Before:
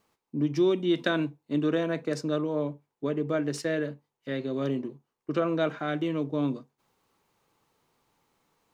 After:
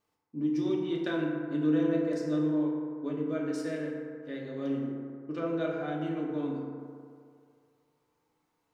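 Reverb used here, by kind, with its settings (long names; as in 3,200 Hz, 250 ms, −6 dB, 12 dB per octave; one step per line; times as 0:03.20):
feedback delay network reverb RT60 2.3 s, low-frequency decay 0.8×, high-frequency decay 0.35×, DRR −3 dB
level −11 dB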